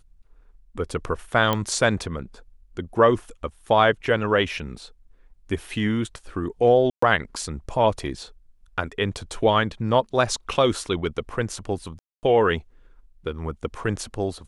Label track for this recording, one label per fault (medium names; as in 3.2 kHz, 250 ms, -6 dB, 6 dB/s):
1.530000	1.530000	pop -9 dBFS
6.900000	7.020000	dropout 124 ms
11.990000	12.230000	dropout 239 ms